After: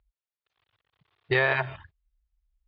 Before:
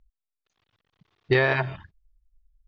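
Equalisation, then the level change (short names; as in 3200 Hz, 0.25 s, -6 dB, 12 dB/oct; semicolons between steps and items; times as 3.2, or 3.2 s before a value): HPF 52 Hz; LPF 4100 Hz 24 dB/oct; bell 220 Hz -13 dB 1.3 oct; 0.0 dB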